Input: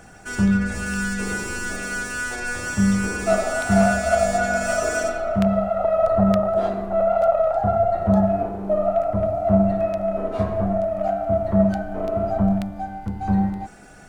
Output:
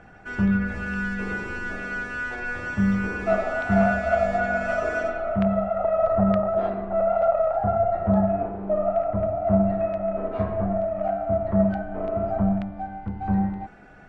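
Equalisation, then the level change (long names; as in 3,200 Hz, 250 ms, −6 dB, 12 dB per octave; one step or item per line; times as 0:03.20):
Chebyshev low-pass filter 2,200 Hz, order 2
−2.0 dB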